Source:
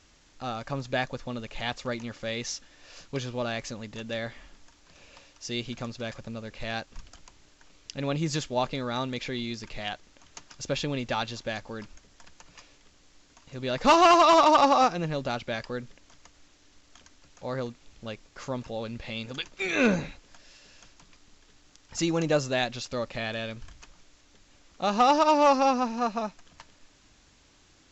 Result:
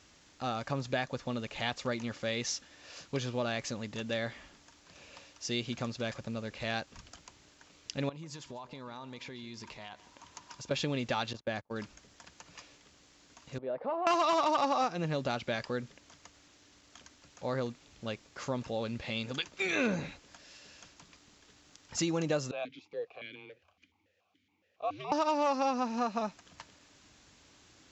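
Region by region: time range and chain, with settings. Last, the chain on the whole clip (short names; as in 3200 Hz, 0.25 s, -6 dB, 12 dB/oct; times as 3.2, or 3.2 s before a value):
8.09–10.71 bell 980 Hz +15 dB 0.23 oct + compressor 12:1, threshold -41 dBFS + echo 0.145 s -17 dB
11.33–11.76 gate -39 dBFS, range -31 dB + high shelf 2900 Hz -10.5 dB
13.58–14.07 compressor 4:1, threshold -26 dBFS + band-pass 590 Hz, Q 1.8 + air absorption 280 m
22.51–25.12 frequency shift -100 Hz + vowel sequencer 7.1 Hz
whole clip: HPF 72 Hz; compressor 3:1, threshold -29 dBFS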